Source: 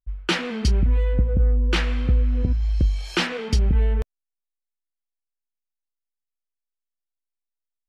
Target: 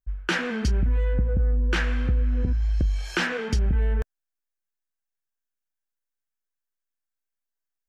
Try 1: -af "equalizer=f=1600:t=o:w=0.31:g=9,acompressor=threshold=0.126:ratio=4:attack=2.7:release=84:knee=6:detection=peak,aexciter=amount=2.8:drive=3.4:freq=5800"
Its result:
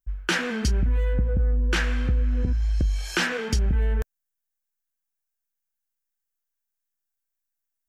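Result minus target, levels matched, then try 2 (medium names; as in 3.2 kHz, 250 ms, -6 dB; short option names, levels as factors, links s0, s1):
8 kHz band +5.5 dB
-af "equalizer=f=1600:t=o:w=0.31:g=9,acompressor=threshold=0.126:ratio=4:attack=2.7:release=84:knee=6:detection=peak,highshelf=f=5800:g=-10.5,aexciter=amount=2.8:drive=3.4:freq=5800"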